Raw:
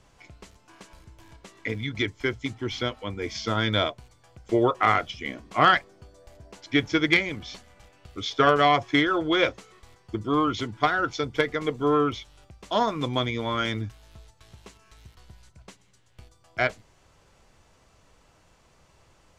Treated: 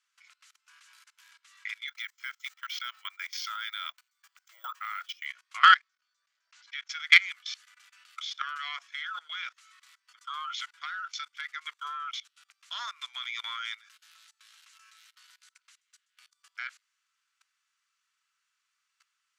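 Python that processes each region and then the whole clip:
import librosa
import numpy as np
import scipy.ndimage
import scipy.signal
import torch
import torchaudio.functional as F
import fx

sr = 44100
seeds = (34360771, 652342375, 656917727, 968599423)

y = fx.chain(x, sr, fx.peak_eq(hz=3300.0, db=-2.5, octaves=1.7),
    fx.resample_bad(factor=2, down='filtered', up='hold'), at=(1.88, 5.26))
y = fx.chain(y, sr, fx.lowpass(hz=6900.0, slope=24),
    fx.level_steps(step_db=14), at=(5.77, 6.89))
y = fx.transient(y, sr, attack_db=1, sustain_db=-4)
y = scipy.signal.sosfilt(scipy.signal.cheby1(4, 1.0, 1300.0, 'highpass', fs=sr, output='sos'), y)
y = fx.level_steps(y, sr, step_db=22)
y = F.gain(torch.from_numpy(y), 7.5).numpy()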